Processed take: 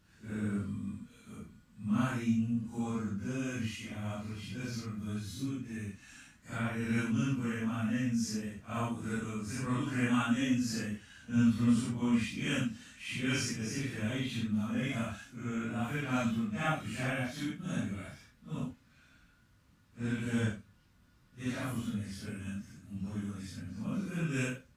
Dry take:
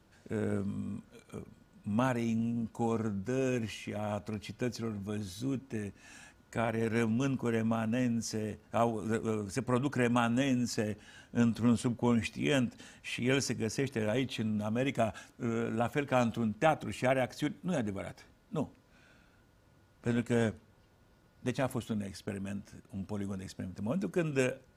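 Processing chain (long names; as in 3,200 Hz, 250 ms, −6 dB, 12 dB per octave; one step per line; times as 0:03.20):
random phases in long frames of 200 ms
flat-topped bell 560 Hz −10 dB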